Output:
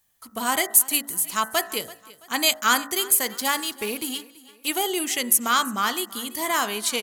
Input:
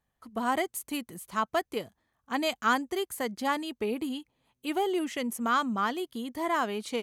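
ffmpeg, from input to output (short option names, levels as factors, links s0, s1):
-filter_complex "[0:a]asettb=1/sr,asplit=3[s0][s1][s2];[s0]atrim=end=3.214[s3];[s1]atrim=start=3.21:end=4.68,asetpts=PTS-STARTPTS,afade=t=in:d=0.004:c=qsin,afade=t=out:st=1.466:d=0.004:c=qsin,aeval=exprs='sgn(val(0))*max(abs(val(0))-0.00335,0)':c=same[s4];[s2]atrim=start=4.676[s5];[s3][s4]acrossfade=d=0.004:c1=hsin:c2=qsin[s6];[s6][s5]acrossfade=d=0.004:c1=qsin:c2=hsin,crystalizer=i=8.5:c=0,bandreject=f=56.63:t=h:w=4,bandreject=f=113.26:t=h:w=4,bandreject=f=169.89:t=h:w=4,bandreject=f=226.52:t=h:w=4,bandreject=f=283.15:t=h:w=4,bandreject=f=339.78:t=h:w=4,bandreject=f=396.41:t=h:w=4,bandreject=f=453.04:t=h:w=4,bandreject=f=509.67:t=h:w=4,bandreject=f=566.3:t=h:w=4,bandreject=f=622.93:t=h:w=4,bandreject=f=679.56:t=h:w=4,bandreject=f=736.19:t=h:w=4,bandreject=f=792.82:t=h:w=4,bandreject=f=849.45:t=h:w=4,bandreject=f=906.08:t=h:w=4,bandreject=f=962.71:t=h:w=4,bandreject=f=1019.34:t=h:w=4,bandreject=f=1075.97:t=h:w=4,bandreject=f=1132.6:t=h:w=4,bandreject=f=1189.23:t=h:w=4,bandreject=f=1245.86:t=h:w=4,bandreject=f=1302.49:t=h:w=4,bandreject=f=1359.12:t=h:w=4,bandreject=f=1415.75:t=h:w=4,bandreject=f=1472.38:t=h:w=4,bandreject=f=1529.01:t=h:w=4,bandreject=f=1585.64:t=h:w=4,bandreject=f=1642.27:t=h:w=4,bandreject=f=1698.9:t=h:w=4,bandreject=f=1755.53:t=h:w=4,bandreject=f=1812.16:t=h:w=4,bandreject=f=1868.79:t=h:w=4,bandreject=f=1925.42:t=h:w=4,bandreject=f=1982.05:t=h:w=4,asplit=2[s7][s8];[s8]aecho=0:1:333|666|999:0.1|0.041|0.0168[s9];[s7][s9]amix=inputs=2:normalize=0"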